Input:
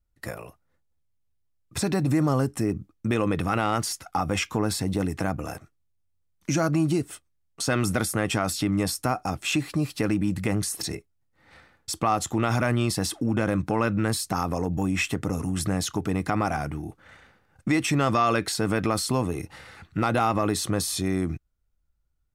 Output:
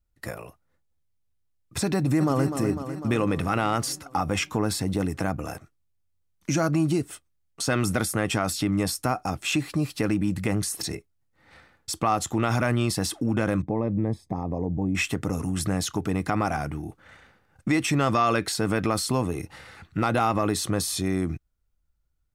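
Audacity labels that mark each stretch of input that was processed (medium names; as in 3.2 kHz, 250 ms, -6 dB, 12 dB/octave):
1.950000	2.450000	echo throw 250 ms, feedback 70%, level -8 dB
13.620000	14.950000	boxcar filter over 31 samples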